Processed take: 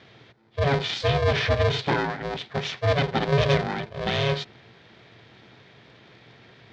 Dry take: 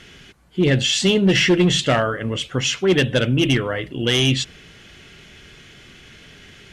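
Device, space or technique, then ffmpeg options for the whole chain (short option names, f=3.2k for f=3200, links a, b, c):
ring modulator pedal into a guitar cabinet: -filter_complex "[0:a]asettb=1/sr,asplit=3[a][b][c];[a]atrim=end=3.324[d];[b]atrim=start=3.32:end=3.85,asetpts=PTS-STARTPTS,afade=t=in:d=0.004:c=qsin,afade=t=out:st=0.526:d=0.004:c=qsin,bass=f=250:g=5,treble=f=4k:g=10[e];[c]atrim=start=3.846[f];[d][e]acrossfade=d=0.004:c1=hsin:c2=qsin[g];[g][f]acrossfade=d=0.004:c1=qsin:c2=hsin,aeval=exprs='val(0)*sgn(sin(2*PI*280*n/s))':c=same,highpass=86,equalizer=f=120:t=q:w=4:g=9,equalizer=f=1.2k:t=q:w=4:g=-4,equalizer=f=2.8k:t=q:w=4:g=-8,lowpass=f=4.3k:w=0.5412,lowpass=f=4.3k:w=1.3066,volume=-5.5dB"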